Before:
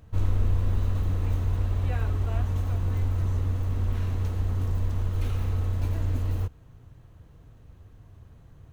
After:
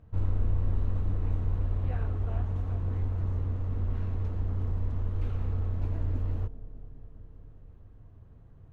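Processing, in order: LPF 1200 Hz 6 dB/oct; analogue delay 0.201 s, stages 1024, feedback 78%, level -16 dB; Doppler distortion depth 0.27 ms; gain -3.5 dB

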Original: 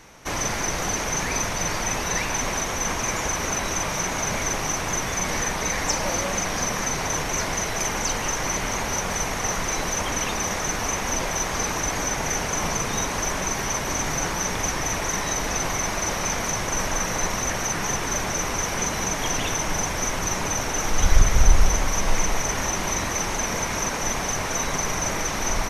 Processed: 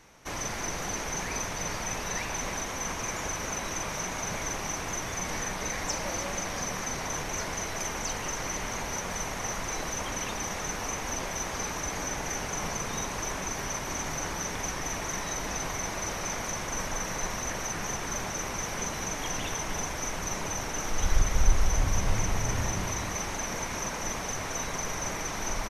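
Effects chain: 21.77–22.86 bell 94 Hz +14.5 dB 1.5 oct; outdoor echo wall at 54 m, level -8 dB; gain -8 dB

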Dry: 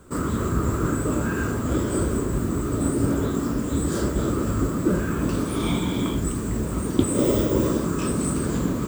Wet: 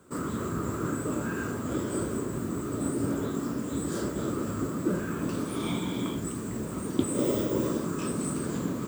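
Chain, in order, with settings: HPF 120 Hz 12 dB/oct; gain -6 dB

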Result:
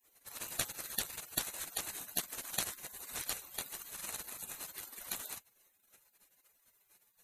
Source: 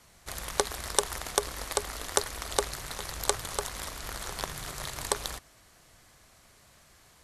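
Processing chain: four-band scrambler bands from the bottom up 4321; spectral gate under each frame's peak -25 dB weak; gain +9 dB

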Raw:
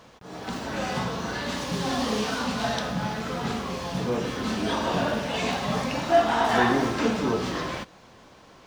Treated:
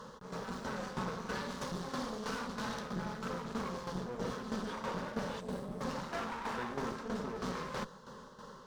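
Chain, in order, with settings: high shelf 6300 Hz -8.5 dB; fixed phaser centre 470 Hz, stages 8; reverse; compressor 6:1, threshold -36 dBFS, peak gain reduction 15 dB; reverse; spectral gain 5.4–5.81, 660–7500 Hz -11 dB; one-sided clip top -48.5 dBFS; tremolo saw down 3.1 Hz, depth 65%; gain +6 dB

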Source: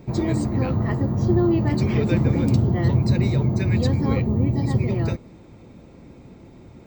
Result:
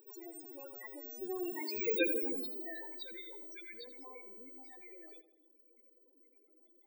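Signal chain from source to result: Doppler pass-by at 2.05, 19 m/s, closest 2.8 m; HPF 290 Hz 24 dB/oct; tilt +4.5 dB/oct; in parallel at -1.5 dB: upward compressor, threshold -39 dBFS; on the sum: loudest bins only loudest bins 8; on a send: darkening echo 82 ms, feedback 58%, low-pass 2100 Hz, level -10 dB; on the sum: gain -4 dB

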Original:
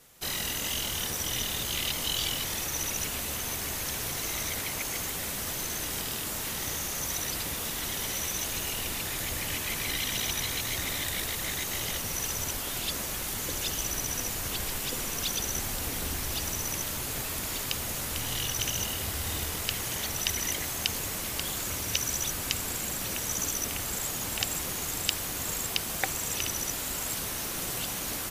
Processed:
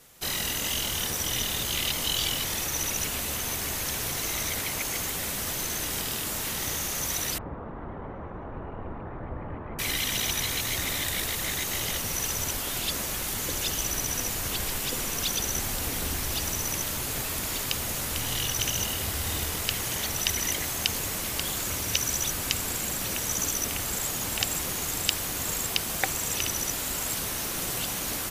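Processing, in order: 7.38–9.79 LPF 1200 Hz 24 dB/oct; gain +2.5 dB

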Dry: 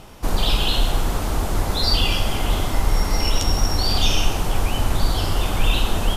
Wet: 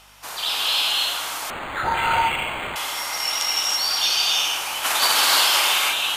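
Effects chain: 4.83–5.59 spectral limiter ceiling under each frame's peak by 22 dB; HPF 1200 Hz 12 dB/oct; hum 50 Hz, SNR 32 dB; non-linear reverb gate 0.35 s rising, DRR -3 dB; 1.5–2.76 decimation joined by straight lines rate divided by 8×

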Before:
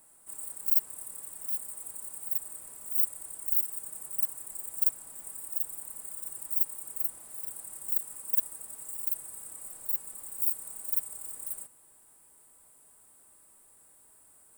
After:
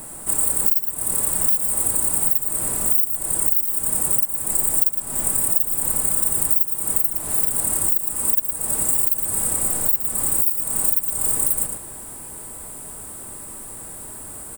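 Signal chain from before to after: low shelf 390 Hz +10.5 dB; outdoor echo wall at 19 m, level -7 dB; compressor 8:1, threshold -37 dBFS, peak gain reduction 19 dB; maximiser +23.5 dB; gain -1 dB

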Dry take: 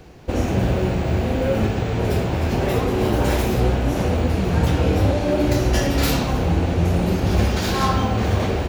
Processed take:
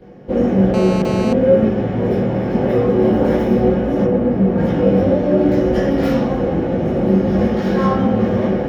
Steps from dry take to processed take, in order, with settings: 4.04–4.58 high shelf 2700 Hz -10.5 dB; reverb RT60 0.15 s, pre-delay 15 ms, DRR -8.5 dB; 0.74–1.33 GSM buzz -8 dBFS; gain -17.5 dB

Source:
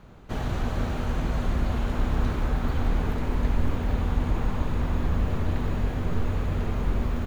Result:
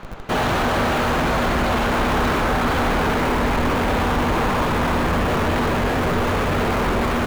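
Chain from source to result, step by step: overdrive pedal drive 25 dB, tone 3000 Hz, clips at -11.5 dBFS; in parallel at -9 dB: Schmitt trigger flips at -30.5 dBFS

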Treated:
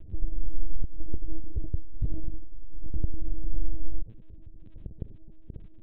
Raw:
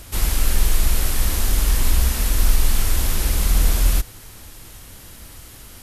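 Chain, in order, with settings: 0.81–2.98 negative-ratio compressor -19 dBFS, ratio -0.5; Gaussian blur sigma 21 samples; crackle 24/s -44 dBFS; LPC vocoder at 8 kHz pitch kept

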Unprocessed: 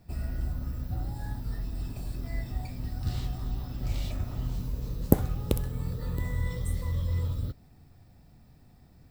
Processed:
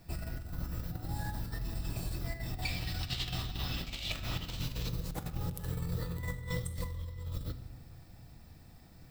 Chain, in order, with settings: 2.62–4.89 bell 3100 Hz +13.5 dB 1.6 oct; negative-ratio compressor -33 dBFS, ratio -0.5; tilt shelf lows -3 dB, about 1100 Hz; notches 50/100/150/200/250 Hz; shoebox room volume 3200 m³, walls mixed, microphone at 0.68 m

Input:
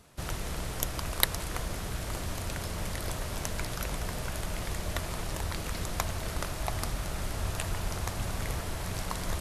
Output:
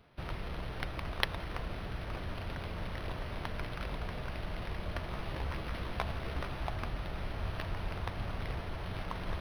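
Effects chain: 5.11–6.68 doubler 15 ms -5.5 dB; decimation joined by straight lines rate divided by 6×; gain -4 dB

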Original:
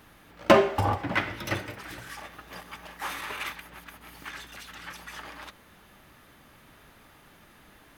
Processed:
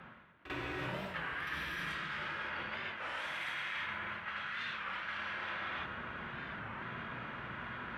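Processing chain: non-linear reverb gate 0.37 s flat, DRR -6 dB; low-pass opened by the level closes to 1500 Hz, open at -22.5 dBFS; band shelf 2500 Hz +10 dB; on a send: reverse echo 46 ms -12 dB; on the sum: frequency shift -270 Hz; reverse; compressor 16:1, threshold -40 dBFS, peak gain reduction 32.5 dB; reverse; HPF 79 Hz 12 dB/oct; record warp 33 1/3 rpm, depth 160 cents; gain +3 dB

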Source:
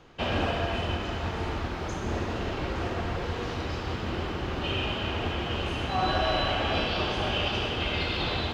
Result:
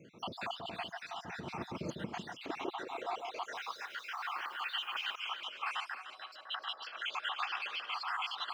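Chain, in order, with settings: random spectral dropouts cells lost 66%; negative-ratio compressor -35 dBFS, ratio -0.5; high-pass sweep 170 Hz -> 1200 Hz, 2.03–3.76; 3.54–5.14 added noise blue -65 dBFS; on a send: echo with dull and thin repeats by turns 0.15 s, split 1100 Hz, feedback 51%, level -4.5 dB; on the sum: gain -5.5 dB

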